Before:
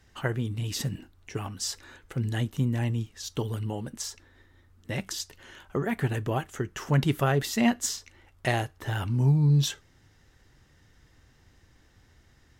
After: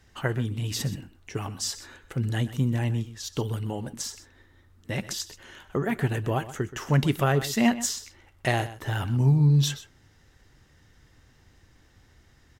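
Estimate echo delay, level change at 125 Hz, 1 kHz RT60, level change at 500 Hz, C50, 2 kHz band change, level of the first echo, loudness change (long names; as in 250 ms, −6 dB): 126 ms, +1.5 dB, no reverb audible, +1.5 dB, no reverb audible, +1.5 dB, −15.0 dB, +1.5 dB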